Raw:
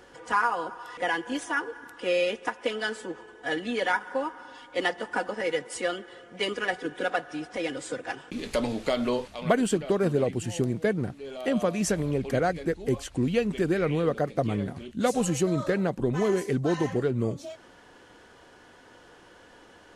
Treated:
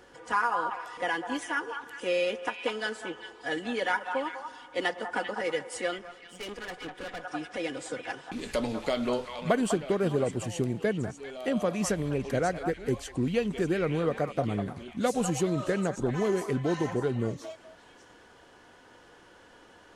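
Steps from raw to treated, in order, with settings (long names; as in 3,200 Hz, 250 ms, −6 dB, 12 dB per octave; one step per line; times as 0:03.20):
echo through a band-pass that steps 198 ms, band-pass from 990 Hz, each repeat 1.4 octaves, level −4 dB
0:05.98–0:07.24: tube saturation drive 32 dB, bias 0.75
level −2.5 dB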